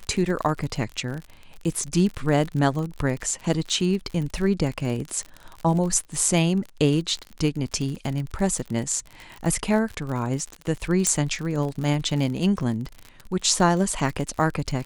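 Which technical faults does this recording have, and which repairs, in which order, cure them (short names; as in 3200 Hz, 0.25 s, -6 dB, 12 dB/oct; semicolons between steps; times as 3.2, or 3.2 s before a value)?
crackle 50/s -29 dBFS
11.07 pop -7 dBFS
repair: de-click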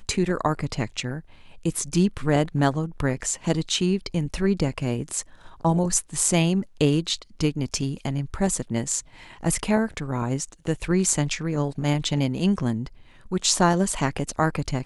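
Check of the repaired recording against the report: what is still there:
11.07 pop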